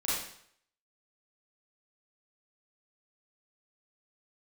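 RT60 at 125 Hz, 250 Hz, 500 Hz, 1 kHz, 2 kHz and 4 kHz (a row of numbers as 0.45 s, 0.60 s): 0.65 s, 0.60 s, 0.65 s, 0.65 s, 0.65 s, 0.60 s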